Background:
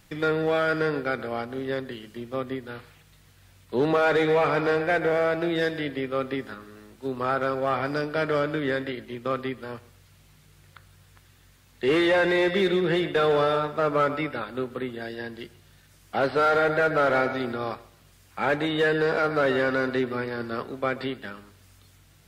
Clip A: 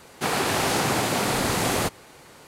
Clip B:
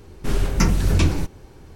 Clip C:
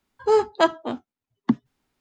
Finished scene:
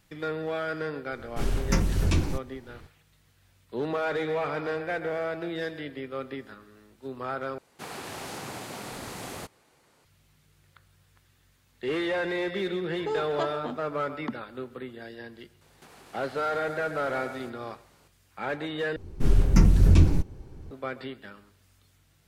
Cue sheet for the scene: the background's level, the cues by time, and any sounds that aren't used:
background -7.5 dB
1.12 add B -6.5 dB
7.58 replace with A -15 dB
12.79 add C -6 dB + compressor 3:1, threshold -23 dBFS
15.61 add A -13.5 dB + compressor 12:1, threshold -35 dBFS
18.96 replace with B -9.5 dB + low shelf 410 Hz +11 dB

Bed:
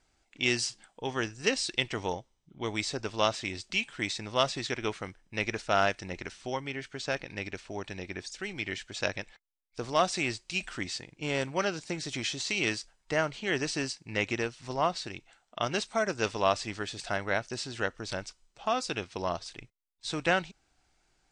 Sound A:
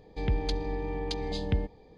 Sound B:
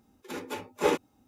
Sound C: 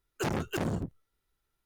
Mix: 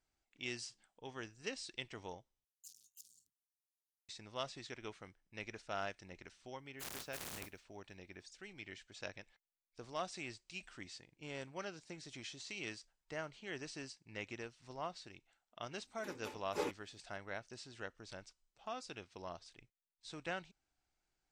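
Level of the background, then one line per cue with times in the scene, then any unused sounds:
bed -15.5 dB
2.44 replace with C -10.5 dB + inverse Chebyshev high-pass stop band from 2100 Hz, stop band 50 dB
6.6 add C -16.5 dB + spectral contrast lowered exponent 0.19
15.74 add B -13.5 dB
not used: A

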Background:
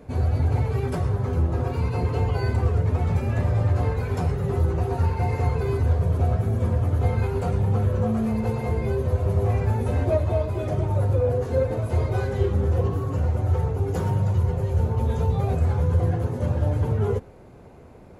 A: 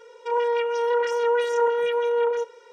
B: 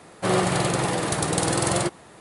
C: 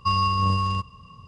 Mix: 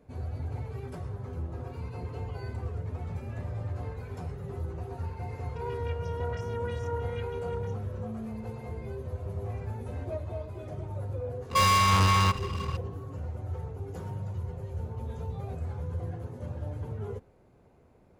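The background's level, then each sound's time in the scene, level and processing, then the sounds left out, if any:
background -13.5 dB
5.3 add A -14 dB
11.5 add C -7.5 dB + sample leveller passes 5
not used: B

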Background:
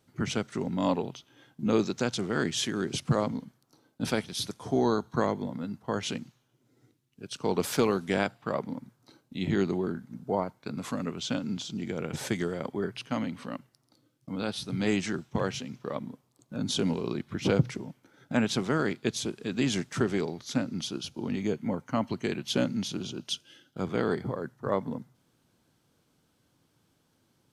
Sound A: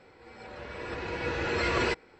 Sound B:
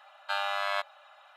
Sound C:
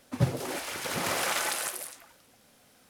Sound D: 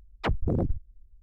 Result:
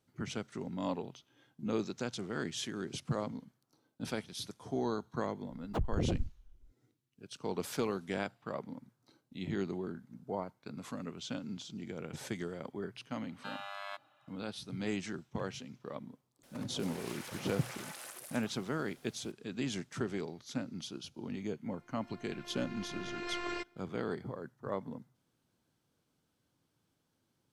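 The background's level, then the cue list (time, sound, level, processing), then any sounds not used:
background -9 dB
5.5 add D -6 dB + median filter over 25 samples
13.15 add B -13 dB
16.43 add C -2.5 dB + compressor 12:1, threshold -40 dBFS
21.69 add A -9 dB + robotiser 350 Hz

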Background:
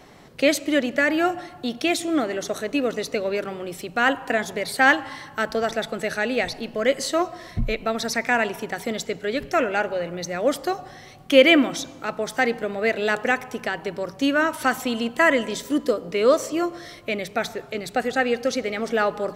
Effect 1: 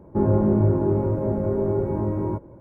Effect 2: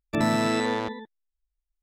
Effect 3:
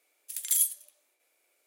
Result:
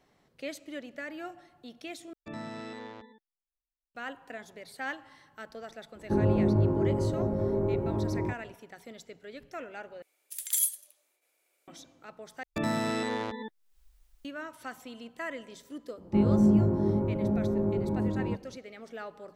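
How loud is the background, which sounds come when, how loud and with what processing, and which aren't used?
background -19.5 dB
2.13 replace with 2 -17 dB + LPF 6000 Hz
5.95 add 1 -5.5 dB
10.02 replace with 3 -2 dB
12.43 replace with 2 -6.5 dB + recorder AGC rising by 54 dB/s, up to +27 dB
15.98 add 1 -7.5 dB + bell 200 Hz +10.5 dB 0.28 oct

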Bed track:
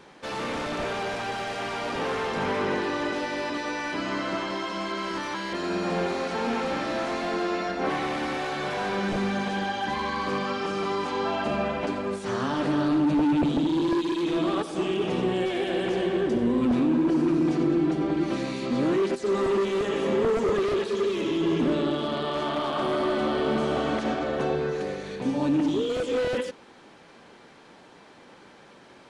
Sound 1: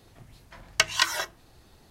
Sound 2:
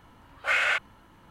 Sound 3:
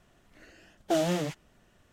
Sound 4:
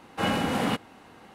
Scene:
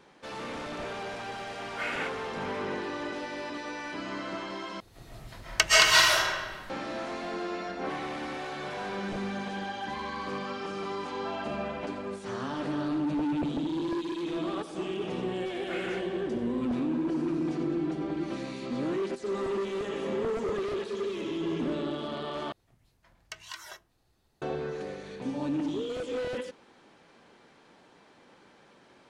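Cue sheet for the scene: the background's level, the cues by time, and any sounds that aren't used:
bed track -7 dB
1.31 add 2 -10.5 dB
4.8 replace with 1 -2 dB + digital reverb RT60 1.4 s, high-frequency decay 0.75×, pre-delay 95 ms, DRR -8 dB
15.22 add 2 -16 dB
22.52 replace with 1 -15 dB + limiter -11.5 dBFS
not used: 3, 4

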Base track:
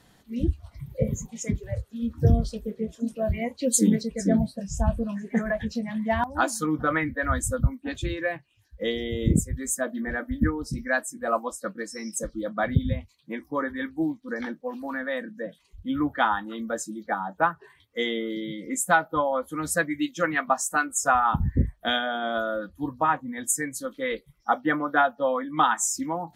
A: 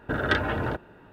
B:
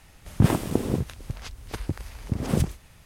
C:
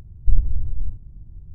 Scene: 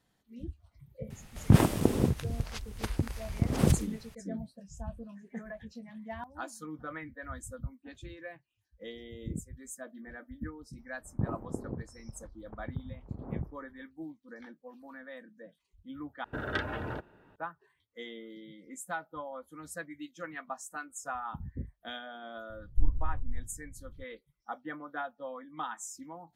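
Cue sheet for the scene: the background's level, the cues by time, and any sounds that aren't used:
base track -16.5 dB
1.1 add B -1 dB
10.79 add B -13 dB + LPF 1100 Hz 24 dB/oct
16.24 replace with A -9 dB
22.5 add C -10 dB

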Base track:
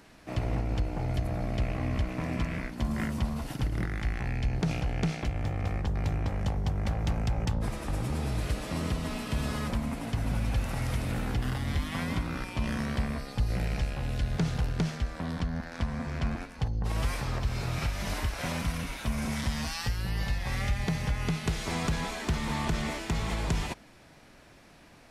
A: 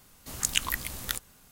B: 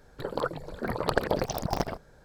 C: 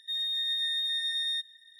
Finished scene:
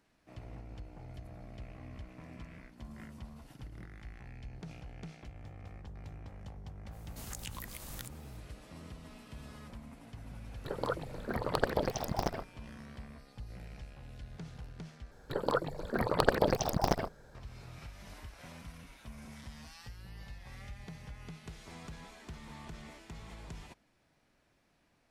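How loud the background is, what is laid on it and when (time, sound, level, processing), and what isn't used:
base track -17.5 dB
6.9 add A -6.5 dB, fades 0.05 s + compressor 4:1, threshold -35 dBFS
10.46 add B -4.5 dB
15.11 replace with B -0.5 dB
not used: C

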